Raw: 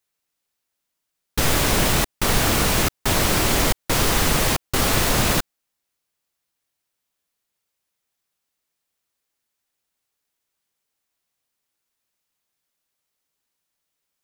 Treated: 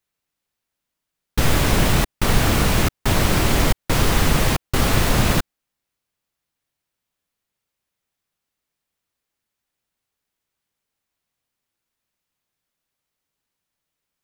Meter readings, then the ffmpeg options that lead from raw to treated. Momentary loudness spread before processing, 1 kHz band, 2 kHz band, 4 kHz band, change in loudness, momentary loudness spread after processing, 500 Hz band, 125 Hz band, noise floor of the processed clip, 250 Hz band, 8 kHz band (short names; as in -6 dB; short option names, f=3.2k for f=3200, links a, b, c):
3 LU, 0.0 dB, 0.0 dB, -2.0 dB, 0.0 dB, 3 LU, +0.5 dB, +4.5 dB, -83 dBFS, +2.5 dB, -3.5 dB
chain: -af "bass=f=250:g=5,treble=f=4k:g=-4"